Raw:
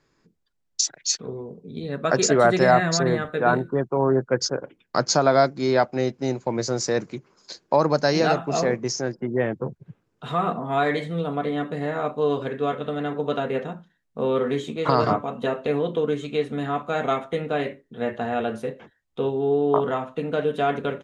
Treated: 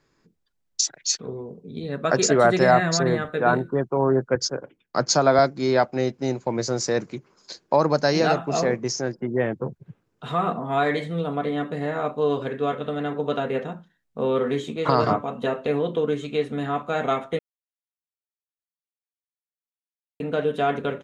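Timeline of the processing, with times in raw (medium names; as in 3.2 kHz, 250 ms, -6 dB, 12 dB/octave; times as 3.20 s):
4.35–5.39 s: three bands expanded up and down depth 40%
17.39–20.20 s: mute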